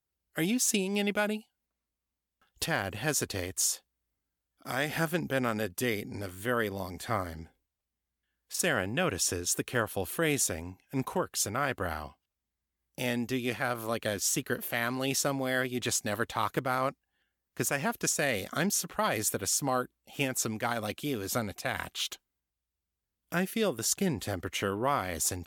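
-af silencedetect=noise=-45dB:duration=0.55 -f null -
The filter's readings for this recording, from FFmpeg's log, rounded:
silence_start: 1.41
silence_end: 2.62 | silence_duration: 1.21
silence_start: 3.77
silence_end: 4.62 | silence_duration: 0.85
silence_start: 7.45
silence_end: 8.51 | silence_duration: 1.06
silence_start: 12.10
silence_end: 12.98 | silence_duration: 0.88
silence_start: 16.92
silence_end: 17.57 | silence_duration: 0.65
silence_start: 22.16
silence_end: 23.32 | silence_duration: 1.17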